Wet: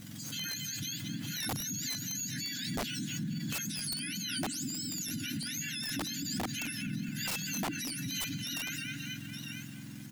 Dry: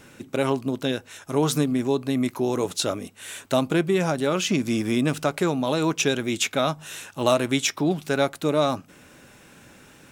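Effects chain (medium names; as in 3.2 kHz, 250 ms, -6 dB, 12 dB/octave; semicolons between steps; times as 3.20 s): spectrum inverted on a logarithmic axis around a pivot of 1.3 kHz; hard clipper -13 dBFS, distortion -19 dB; brick-wall FIR band-stop 330–1400 Hz; filtered feedback delay 218 ms, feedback 64%, low-pass 3 kHz, level -10.5 dB; bit crusher 9-bit; delay 901 ms -19 dB; integer overflow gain 17.5 dB; peak limiter -29.5 dBFS, peak gain reduction 12 dB; swell ahead of each attack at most 28 dB/s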